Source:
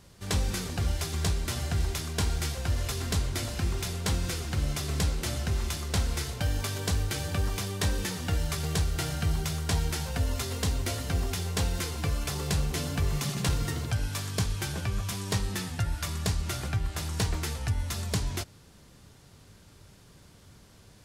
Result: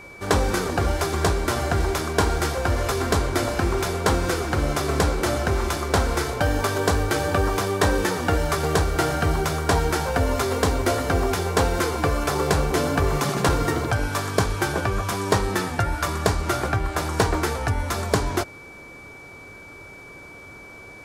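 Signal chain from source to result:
flat-topped bell 670 Hz +11.5 dB 2.9 octaves
steady tone 2,300 Hz −46 dBFS
level +4 dB

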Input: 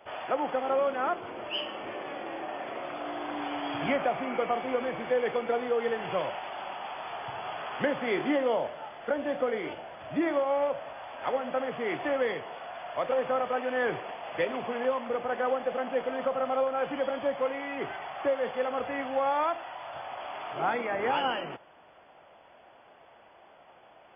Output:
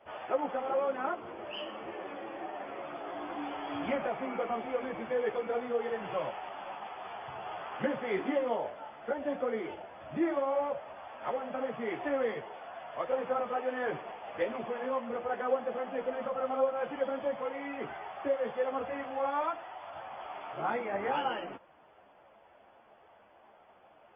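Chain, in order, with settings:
high-shelf EQ 3,000 Hz −9.5 dB
string-ensemble chorus

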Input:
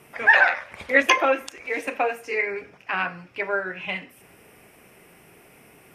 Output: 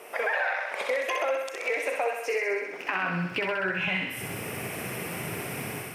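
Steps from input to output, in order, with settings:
surface crackle 120 per second −54 dBFS
automatic gain control gain up to 11 dB
brickwall limiter −14 dBFS, peak gain reduction 12.5 dB
high-pass filter sweep 510 Hz → 110 Hz, 0:02.50–0:03.57
downward compressor 6 to 1, threshold −32 dBFS, peak gain reduction 17 dB
on a send: feedback echo with a high-pass in the loop 64 ms, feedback 70%, high-pass 550 Hz, level −4 dB
on the sum: level +4.5 dB

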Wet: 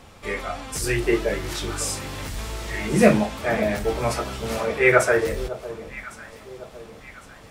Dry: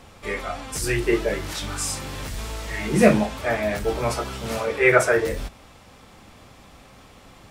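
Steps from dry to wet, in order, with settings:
delay that swaps between a low-pass and a high-pass 553 ms, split 1,000 Hz, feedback 64%, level −13.5 dB

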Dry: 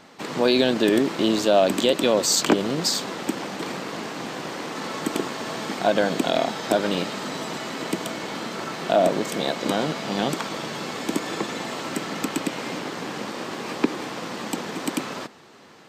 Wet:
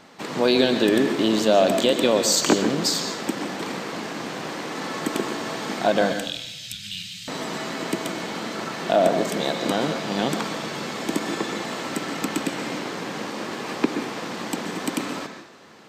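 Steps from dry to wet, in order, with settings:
0:06.12–0:07.28: Chebyshev band-stop filter 120–2,800 Hz, order 3
on a send: convolution reverb RT60 0.95 s, pre-delay 122 ms, DRR 6.5 dB

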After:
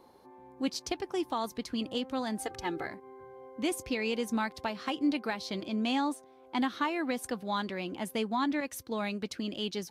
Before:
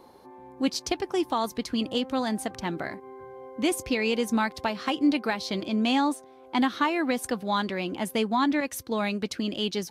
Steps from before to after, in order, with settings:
0:02.39–0:02.87: comb filter 2.4 ms, depth 99%
level −6 dB

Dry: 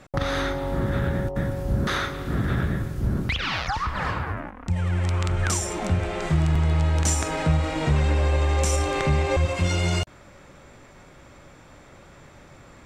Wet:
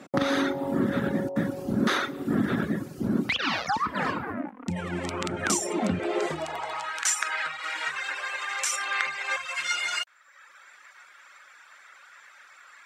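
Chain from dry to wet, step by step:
reverb reduction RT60 1 s
high-pass filter sweep 240 Hz → 1,500 Hz, 0:05.98–0:06.99
level +1 dB

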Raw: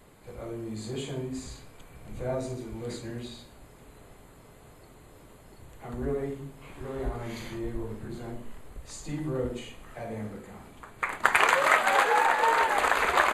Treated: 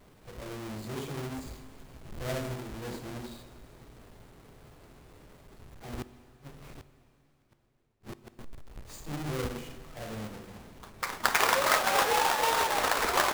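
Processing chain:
each half-wave held at its own peak
0:06.02–0:08.39: gate with flip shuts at −28 dBFS, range −41 dB
dense smooth reverb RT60 3.5 s, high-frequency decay 0.95×, DRR 12 dB
level −7 dB

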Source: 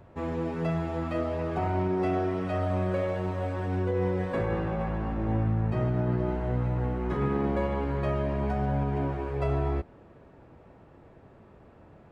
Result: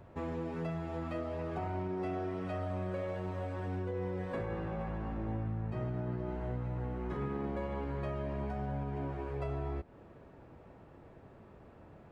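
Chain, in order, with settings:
downward compressor 2.5 to 1, threshold −35 dBFS, peak gain reduction 8.5 dB
level −2 dB

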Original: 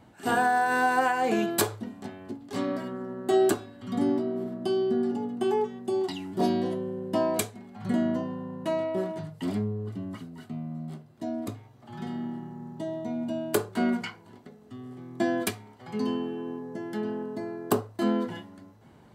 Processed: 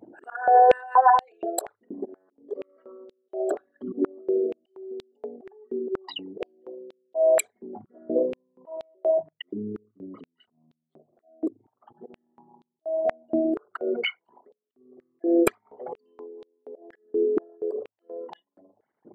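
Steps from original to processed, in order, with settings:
spectral envelope exaggerated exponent 3
volume swells 281 ms
high-pass on a step sequencer 4.2 Hz 340–3,700 Hz
level +5 dB

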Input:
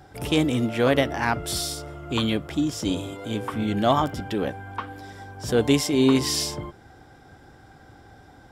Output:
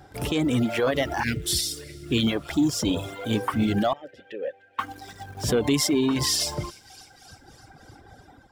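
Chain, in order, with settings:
in parallel at −10.5 dB: bit-depth reduction 6 bits, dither none
0:01.23–0:02.27: on the sum: Chebyshev band-stop filter 410–2,100 Hz, order 2
on a send: delay with a high-pass on its return 302 ms, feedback 55%, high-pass 1,700 Hz, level −15 dB
on the sum: brickwall limiter −15 dBFS, peak gain reduction 10.5 dB
soft clipping −15 dBFS, distortion −23 dB
automatic gain control gain up to 3.5 dB
reverb reduction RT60 1.8 s
0:03.93–0:04.79: formant filter e

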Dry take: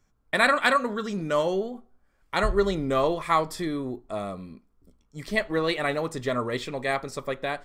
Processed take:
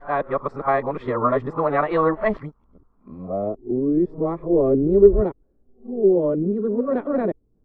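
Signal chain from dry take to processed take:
played backwards from end to start
low-pass filter sweep 1,100 Hz → 390 Hz, 0:03.07–0:03.57
level +4.5 dB

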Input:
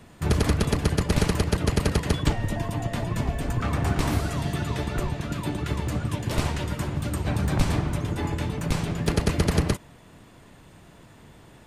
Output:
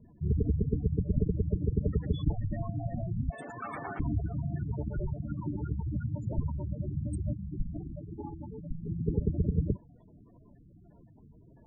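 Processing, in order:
0:03.30–0:04.00: meter weighting curve A
gate on every frequency bin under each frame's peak −10 dB strong
0:07.33–0:08.85: parametric band 100 Hz −12 dB 2 octaves
level −4.5 dB

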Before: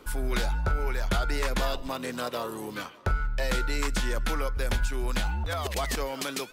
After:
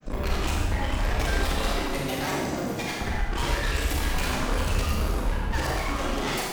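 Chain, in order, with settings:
granular cloud, pitch spread up and down by 12 semitones
tube saturation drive 33 dB, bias 0.55
four-comb reverb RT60 1.3 s, combs from 28 ms, DRR −3 dB
level +6.5 dB

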